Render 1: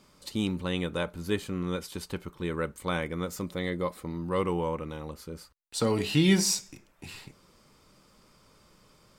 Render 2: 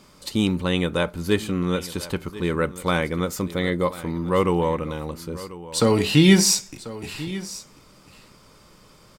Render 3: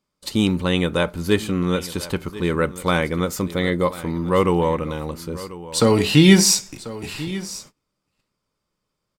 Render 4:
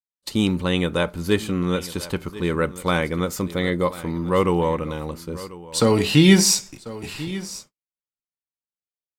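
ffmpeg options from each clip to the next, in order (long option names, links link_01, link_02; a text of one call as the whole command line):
ffmpeg -i in.wav -af "aecho=1:1:1041:0.15,volume=8dB" out.wav
ffmpeg -i in.wav -af "agate=range=-29dB:threshold=-44dB:ratio=16:detection=peak,volume=2.5dB" out.wav
ffmpeg -i in.wav -af "agate=range=-33dB:threshold=-31dB:ratio=3:detection=peak,volume=-1.5dB" out.wav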